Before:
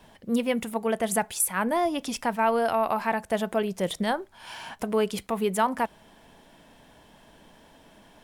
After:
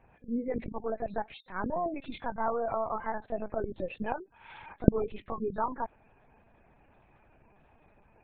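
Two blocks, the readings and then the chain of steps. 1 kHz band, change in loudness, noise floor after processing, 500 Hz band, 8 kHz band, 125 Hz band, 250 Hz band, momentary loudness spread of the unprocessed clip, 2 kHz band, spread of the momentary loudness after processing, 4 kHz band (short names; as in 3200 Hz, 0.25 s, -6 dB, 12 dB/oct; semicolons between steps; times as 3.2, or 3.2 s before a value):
-7.5 dB, -7.0 dB, -64 dBFS, -7.0 dB, under -40 dB, +1.5 dB, -5.5 dB, 7 LU, -11.0 dB, 11 LU, -18.0 dB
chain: nonlinear frequency compression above 1500 Hz 1.5:1; spectral gate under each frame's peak -20 dB strong; LPC vocoder at 8 kHz pitch kept; gain -7 dB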